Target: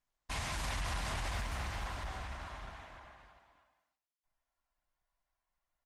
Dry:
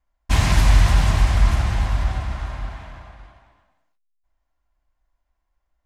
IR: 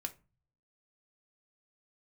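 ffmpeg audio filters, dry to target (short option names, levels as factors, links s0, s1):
-filter_complex "[0:a]lowshelf=f=370:g=-11.5,bandreject=f=50:t=h:w=6,bandreject=f=100:t=h:w=6,bandreject=f=150:t=h:w=6,bandreject=f=200:t=h:w=6,bandreject=f=250:t=h:w=6,bandreject=f=300:t=h:w=6,bandreject=f=350:t=h:w=6,bandreject=f=400:t=h:w=6,bandreject=f=450:t=h:w=6,asplit=3[s0][s1][s2];[s0]afade=t=out:st=0.63:d=0.02[s3];[s1]acontrast=60,afade=t=in:st=0.63:d=0.02,afade=t=out:st=1.46:d=0.02[s4];[s2]afade=t=in:st=1.46:d=0.02[s5];[s3][s4][s5]amix=inputs=3:normalize=0,alimiter=limit=0.112:level=0:latency=1:release=87,asettb=1/sr,asplit=3[s6][s7][s8];[s6]atrim=end=2.254[s9];[s7]atrim=start=2.25:end=2.98,asetpts=PTS-STARTPTS,afade=t=in:d=0.004:c=qsin,afade=t=out:st=0.726:d=0.004:c=qsin,acompressor=mode=upward:threshold=0.00794:ratio=2.5[s10];[s8]atrim=start=2.976[s11];[s9][s10]acrossfade=d=0.004:c1=hsin:c2=qsin[s12];[s12][s11]acrossfade=d=0.004:c1=qsin:c2=hsin,asoftclip=type=tanh:threshold=0.0631,aecho=1:1:226:0.112,asplit=2[s13][s14];[1:a]atrim=start_sample=2205[s15];[s14][s15]afir=irnorm=-1:irlink=0,volume=0.251[s16];[s13][s16]amix=inputs=2:normalize=0,volume=0.422" -ar 48000 -c:a libopus -b:a 20k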